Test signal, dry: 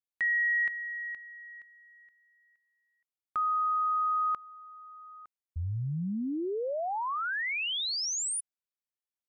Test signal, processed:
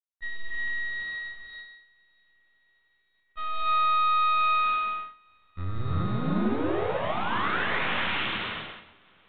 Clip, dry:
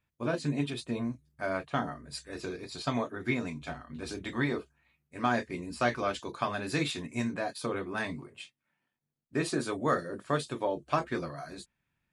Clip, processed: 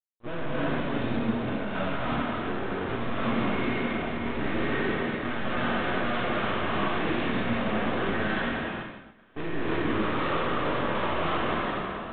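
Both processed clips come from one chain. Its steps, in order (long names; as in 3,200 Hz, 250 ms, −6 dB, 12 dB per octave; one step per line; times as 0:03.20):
peak hold with a decay on every bin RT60 2.78 s
low-pass filter 1,800 Hz 12 dB per octave
in parallel at +1 dB: brickwall limiter −23 dBFS
on the sum: tube saturation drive 27 dB, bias 0.3
dynamic equaliser 790 Hz, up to −4 dB, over −47 dBFS, Q 1.6
on a send: feedback delay with all-pass diffusion 896 ms, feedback 64%, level −11.5 dB
on the sum: half-wave rectification
noise gate −35 dBFS, range −23 dB
reverb whose tail is shaped and stops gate 370 ms rising, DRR −6 dB
level +1.5 dB
G.726 40 kbit/s 8,000 Hz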